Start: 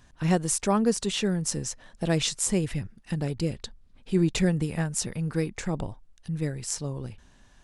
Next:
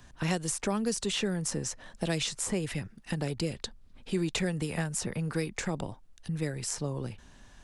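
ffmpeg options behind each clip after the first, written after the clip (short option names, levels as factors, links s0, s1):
-filter_complex "[0:a]acrossover=split=120|430|2300[s0][s1][s2][s3];[s0]acompressor=threshold=0.00355:ratio=4[s4];[s1]acompressor=threshold=0.0158:ratio=4[s5];[s2]acompressor=threshold=0.0126:ratio=4[s6];[s3]acompressor=threshold=0.0158:ratio=4[s7];[s4][s5][s6][s7]amix=inputs=4:normalize=0,volume=1.41"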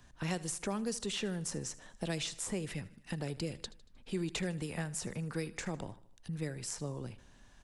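-af "aecho=1:1:77|154|231|308:0.112|0.0583|0.0303|0.0158,volume=0.501"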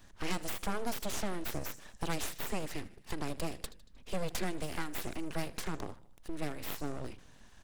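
-af "aeval=exprs='abs(val(0))':c=same,volume=1.5"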